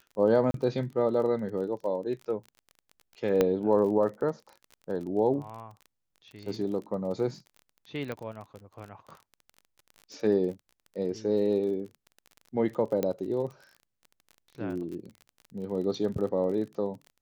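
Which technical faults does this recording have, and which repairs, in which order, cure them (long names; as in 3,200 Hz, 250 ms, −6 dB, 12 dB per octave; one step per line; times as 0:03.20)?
surface crackle 33 per second −38 dBFS
0:00.51–0:00.54: drop-out 32 ms
0:03.41: click −11 dBFS
0:08.12: click −22 dBFS
0:13.03: click −15 dBFS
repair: click removal
repair the gap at 0:00.51, 32 ms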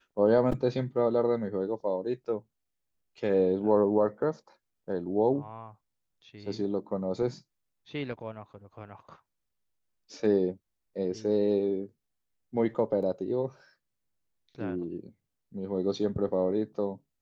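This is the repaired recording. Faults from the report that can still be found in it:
0:13.03: click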